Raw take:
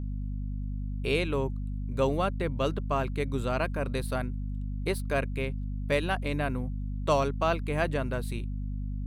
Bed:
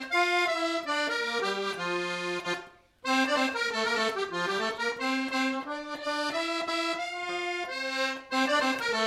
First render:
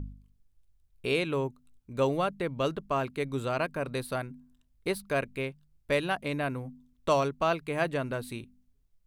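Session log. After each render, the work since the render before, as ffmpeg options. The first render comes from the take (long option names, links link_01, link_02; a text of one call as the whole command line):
ffmpeg -i in.wav -af "bandreject=frequency=50:width_type=h:width=4,bandreject=frequency=100:width_type=h:width=4,bandreject=frequency=150:width_type=h:width=4,bandreject=frequency=200:width_type=h:width=4,bandreject=frequency=250:width_type=h:width=4" out.wav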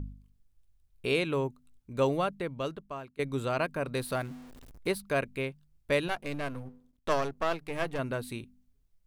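ffmpeg -i in.wav -filter_complex "[0:a]asettb=1/sr,asplit=3[link_01][link_02][link_03];[link_01]atrim=end=3.944[link_04];[link_02]atrim=start=3.94:end=4.92,asetpts=PTS-STARTPTS,afade=type=in:duration=0.004:curve=qsin,afade=type=out:start_time=0.976:duration=0.004:curve=qsin,aeval=exprs='val(0)+0.5*0.00531*sgn(val(0))':channel_layout=same[link_05];[link_03]atrim=start=4.916[link_06];[link_04][link_05]acrossfade=duration=0.004:curve1=hsin:curve2=qsin[link_07];[link_07][link_06]acrossfade=duration=0.004:curve1=qsin:curve2=hsin,asettb=1/sr,asplit=3[link_08][link_09][link_10];[link_08]atrim=end=6.084[link_11];[link_09]atrim=start=6.08:end=7.99,asetpts=PTS-STARTPTS,afade=type=in:duration=0.004:curve=qsin,afade=type=out:start_time=1.906:duration=0.004:curve=qsin,aeval=exprs='if(lt(val(0),0),0.251*val(0),val(0))':channel_layout=same[link_12];[link_10]atrim=start=7.986[link_13];[link_11][link_12]acrossfade=duration=0.004:curve1=hsin:curve2=qsin[link_14];[link_14][link_13]acrossfade=duration=0.004:curve1=qsin:curve2=hsin,asplit=2[link_15][link_16];[link_15]atrim=end=3.19,asetpts=PTS-STARTPTS,afade=type=out:start_time=2.12:duration=1.07:silence=0.0944061[link_17];[link_16]atrim=start=3.19,asetpts=PTS-STARTPTS,afade=type=in:duration=0.004:curve=hsin:silence=0.0944061[link_18];[link_17][link_18]concat=n=2:v=0:a=1" out.wav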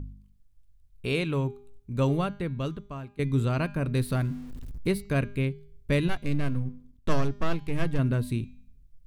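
ffmpeg -i in.wav -af "bandreject=frequency=202.3:width_type=h:width=4,bandreject=frequency=404.6:width_type=h:width=4,bandreject=frequency=606.9:width_type=h:width=4,bandreject=frequency=809.2:width_type=h:width=4,bandreject=frequency=1011.5:width_type=h:width=4,bandreject=frequency=1213.8:width_type=h:width=4,bandreject=frequency=1416.1:width_type=h:width=4,bandreject=frequency=1618.4:width_type=h:width=4,bandreject=frequency=1820.7:width_type=h:width=4,bandreject=frequency=2023:width_type=h:width=4,bandreject=frequency=2225.3:width_type=h:width=4,bandreject=frequency=2427.6:width_type=h:width=4,bandreject=frequency=2629.9:width_type=h:width=4,bandreject=frequency=2832.2:width_type=h:width=4,bandreject=frequency=3034.5:width_type=h:width=4,bandreject=frequency=3236.8:width_type=h:width=4,bandreject=frequency=3439.1:width_type=h:width=4,bandreject=frequency=3641.4:width_type=h:width=4,bandreject=frequency=3843.7:width_type=h:width=4,bandreject=frequency=4046:width_type=h:width=4,bandreject=frequency=4248.3:width_type=h:width=4,bandreject=frequency=4450.6:width_type=h:width=4,bandreject=frequency=4652.9:width_type=h:width=4,bandreject=frequency=4855.2:width_type=h:width=4,bandreject=frequency=5057.5:width_type=h:width=4,bandreject=frequency=5259.8:width_type=h:width=4,bandreject=frequency=5462.1:width_type=h:width=4,bandreject=frequency=5664.4:width_type=h:width=4,bandreject=frequency=5866.7:width_type=h:width=4,bandreject=frequency=6069:width_type=h:width=4,bandreject=frequency=6271.3:width_type=h:width=4,bandreject=frequency=6473.6:width_type=h:width=4,bandreject=frequency=6675.9:width_type=h:width=4,bandreject=frequency=6878.2:width_type=h:width=4,bandreject=frequency=7080.5:width_type=h:width=4,bandreject=frequency=7282.8:width_type=h:width=4,bandreject=frequency=7485.1:width_type=h:width=4,bandreject=frequency=7687.4:width_type=h:width=4,asubboost=boost=6:cutoff=250" out.wav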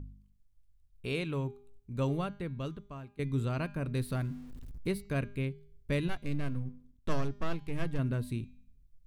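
ffmpeg -i in.wav -af "volume=-6.5dB" out.wav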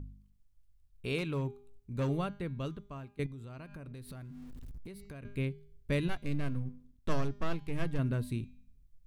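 ffmpeg -i in.wav -filter_complex "[0:a]asettb=1/sr,asplit=3[link_01][link_02][link_03];[link_01]atrim=end=1.184[link_04];[link_02]atrim=start=1.18:end=2.09,asetpts=PTS-STARTPTS,afade=type=in:duration=0.004:curve=qsin,afade=type=out:start_time=0.906:duration=0.004:curve=qsin,asoftclip=type=hard:threshold=-27dB[link_05];[link_03]atrim=start=2.086[link_06];[link_04][link_05]acrossfade=duration=0.004:curve1=hsin:curve2=qsin[link_07];[link_07][link_06]acrossfade=duration=0.004:curve1=qsin:curve2=hsin,asettb=1/sr,asplit=3[link_08][link_09][link_10];[link_08]atrim=end=3.264[link_11];[link_09]atrim=start=3.26:end=5.25,asetpts=PTS-STARTPTS,afade=type=in:duration=0.004:curve=qsin,afade=type=out:start_time=1.986:duration=0.004:curve=qsin,acompressor=threshold=-42dB:ratio=16:attack=3.2:release=140:knee=1:detection=peak[link_12];[link_10]atrim=start=5.246[link_13];[link_11][link_12]acrossfade=duration=0.004:curve1=hsin:curve2=qsin[link_14];[link_14][link_13]acrossfade=duration=0.004:curve1=qsin:curve2=hsin" out.wav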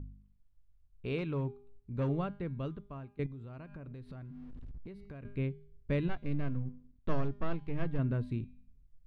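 ffmpeg -i in.wav -af "lowpass=3900,highshelf=frequency=2200:gain=-8.5" out.wav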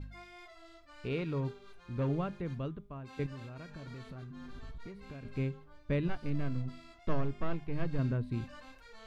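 ffmpeg -i in.wav -i bed.wav -filter_complex "[1:a]volume=-27dB[link_01];[0:a][link_01]amix=inputs=2:normalize=0" out.wav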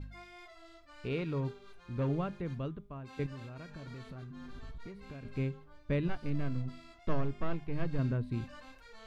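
ffmpeg -i in.wav -af anull out.wav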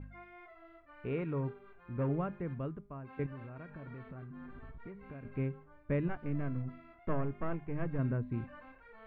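ffmpeg -i in.wav -af "lowpass=frequency=2200:width=0.5412,lowpass=frequency=2200:width=1.3066,lowshelf=frequency=65:gain=-7" out.wav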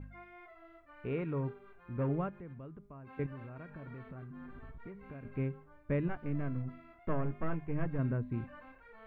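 ffmpeg -i in.wav -filter_complex "[0:a]asettb=1/sr,asplit=3[link_01][link_02][link_03];[link_01]atrim=end=2.294[link_04];[link_02]atrim=start=2.29:end=3.07,asetpts=PTS-STARTPTS,afade=type=in:duration=0.004:curve=qsin,afade=type=out:start_time=0.776:duration=0.004:curve=qsin,acompressor=threshold=-48dB:ratio=2.5:attack=3.2:release=140:knee=1:detection=peak[link_05];[link_03]atrim=start=3.066[link_06];[link_04][link_05]acrossfade=duration=0.004:curve1=hsin:curve2=qsin[link_07];[link_07][link_06]acrossfade=duration=0.004:curve1=qsin:curve2=hsin,asettb=1/sr,asplit=3[link_08][link_09][link_10];[link_08]atrim=end=7.244[link_11];[link_09]atrim=start=7.24:end=7.86,asetpts=PTS-STARTPTS,afade=type=in:duration=0.004:curve=qsin,afade=type=out:start_time=0.616:duration=0.004:curve=qsin,asplit=2[link_12][link_13];[link_13]adelay=13,volume=-7dB[link_14];[link_12][link_14]amix=inputs=2:normalize=0,atrim=end_sample=27342[link_15];[link_10]atrim=start=7.856[link_16];[link_11][link_15]acrossfade=duration=0.004:curve1=hsin:curve2=qsin[link_17];[link_17][link_16]acrossfade=duration=0.004:curve1=qsin:curve2=hsin" out.wav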